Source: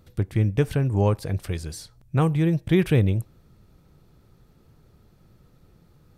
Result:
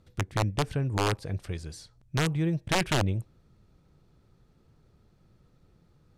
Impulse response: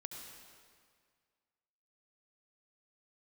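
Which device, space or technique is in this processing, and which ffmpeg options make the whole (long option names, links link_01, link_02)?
overflowing digital effects unit: -af "aeval=exprs='(mod(3.98*val(0)+1,2)-1)/3.98':channel_layout=same,lowpass=8700,volume=-6dB"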